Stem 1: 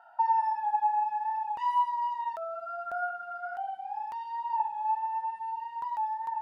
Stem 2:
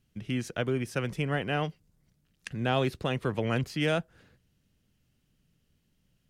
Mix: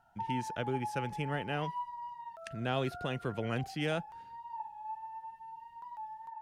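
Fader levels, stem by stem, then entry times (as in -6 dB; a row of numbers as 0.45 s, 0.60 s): -12.5 dB, -6.0 dB; 0.00 s, 0.00 s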